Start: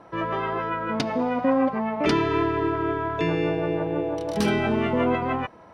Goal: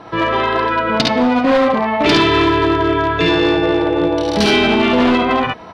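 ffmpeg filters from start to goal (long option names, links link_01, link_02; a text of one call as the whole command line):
ffmpeg -i in.wav -filter_complex "[0:a]bandreject=frequency=560:width=18,asplit=2[link_01][link_02];[link_02]aecho=0:1:52|69:0.562|0.708[link_03];[link_01][link_03]amix=inputs=2:normalize=0,asoftclip=type=hard:threshold=-17dB,equalizer=frequency=4000:width_type=o:width=1.3:gain=11.5,asplit=2[link_04][link_05];[link_05]acompressor=threshold=-28dB:ratio=6,volume=-3dB[link_06];[link_04][link_06]amix=inputs=2:normalize=0,highshelf=frequency=5400:gain=-8.5,volume=6dB" out.wav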